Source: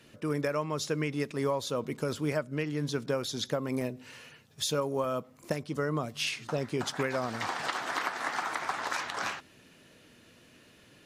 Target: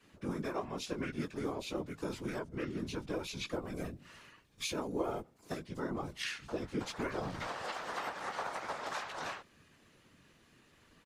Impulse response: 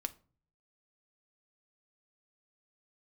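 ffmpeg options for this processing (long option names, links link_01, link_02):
-filter_complex "[0:a]asplit=2[link_01][link_02];[link_02]adelay=17,volume=-3dB[link_03];[link_01][link_03]amix=inputs=2:normalize=0,afftfilt=real='hypot(re,im)*cos(2*PI*random(0))':imag='hypot(re,im)*sin(2*PI*random(1))':win_size=512:overlap=0.75,asplit=2[link_04][link_05];[link_05]asetrate=29433,aresample=44100,atempo=1.49831,volume=0dB[link_06];[link_04][link_06]amix=inputs=2:normalize=0,volume=-5dB"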